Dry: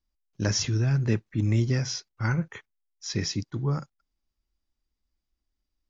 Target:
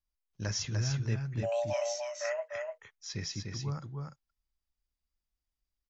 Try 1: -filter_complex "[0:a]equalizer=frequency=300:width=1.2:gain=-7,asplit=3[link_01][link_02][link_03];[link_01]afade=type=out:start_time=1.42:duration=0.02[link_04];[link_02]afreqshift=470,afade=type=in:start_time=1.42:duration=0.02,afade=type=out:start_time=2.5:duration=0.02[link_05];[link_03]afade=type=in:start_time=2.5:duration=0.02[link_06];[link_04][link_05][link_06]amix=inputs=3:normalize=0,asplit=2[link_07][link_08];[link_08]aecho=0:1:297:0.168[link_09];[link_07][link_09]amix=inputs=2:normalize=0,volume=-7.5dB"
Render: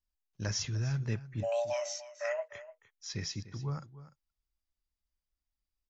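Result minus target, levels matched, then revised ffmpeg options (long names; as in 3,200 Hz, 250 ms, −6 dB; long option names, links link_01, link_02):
echo-to-direct −11.5 dB
-filter_complex "[0:a]equalizer=frequency=300:width=1.2:gain=-7,asplit=3[link_01][link_02][link_03];[link_01]afade=type=out:start_time=1.42:duration=0.02[link_04];[link_02]afreqshift=470,afade=type=in:start_time=1.42:duration=0.02,afade=type=out:start_time=2.5:duration=0.02[link_05];[link_03]afade=type=in:start_time=2.5:duration=0.02[link_06];[link_04][link_05][link_06]amix=inputs=3:normalize=0,asplit=2[link_07][link_08];[link_08]aecho=0:1:297:0.631[link_09];[link_07][link_09]amix=inputs=2:normalize=0,volume=-7.5dB"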